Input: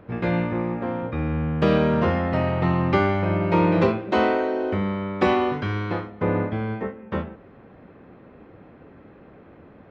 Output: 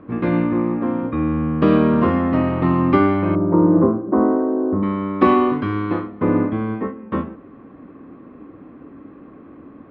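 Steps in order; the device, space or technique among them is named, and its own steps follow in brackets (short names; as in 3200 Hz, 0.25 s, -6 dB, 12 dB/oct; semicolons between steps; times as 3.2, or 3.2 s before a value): 3.35–4.83 Bessel low-pass 850 Hz, order 8; inside a cardboard box (LPF 3600 Hz 12 dB/oct; small resonant body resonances 280/1100 Hz, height 14 dB, ringing for 35 ms); gain -1 dB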